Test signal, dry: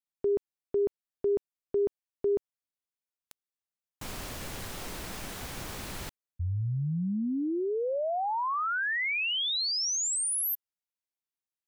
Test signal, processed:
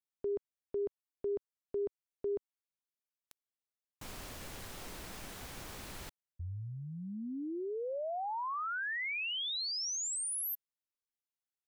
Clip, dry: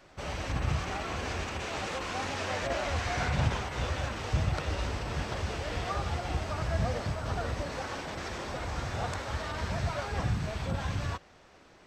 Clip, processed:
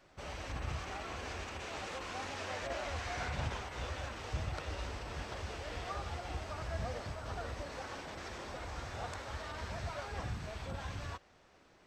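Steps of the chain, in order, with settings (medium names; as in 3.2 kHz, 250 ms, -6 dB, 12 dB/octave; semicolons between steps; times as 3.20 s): dynamic bell 150 Hz, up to -6 dB, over -45 dBFS, Q 1; trim -7 dB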